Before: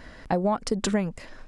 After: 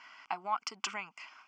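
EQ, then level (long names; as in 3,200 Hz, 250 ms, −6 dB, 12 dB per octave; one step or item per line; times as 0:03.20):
high-pass filter 1,300 Hz 12 dB per octave
low-pass filter 3,700 Hz 12 dB per octave
phaser with its sweep stopped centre 2,600 Hz, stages 8
+4.5 dB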